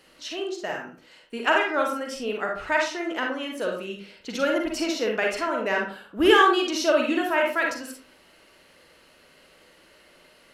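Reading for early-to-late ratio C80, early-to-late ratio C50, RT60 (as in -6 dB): 9.5 dB, 4.0 dB, 0.45 s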